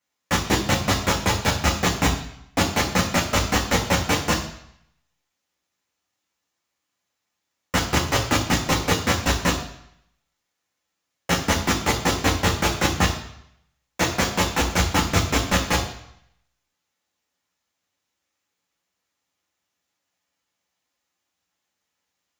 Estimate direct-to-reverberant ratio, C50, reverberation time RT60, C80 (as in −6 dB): −1.0 dB, 8.5 dB, 0.70 s, 11.5 dB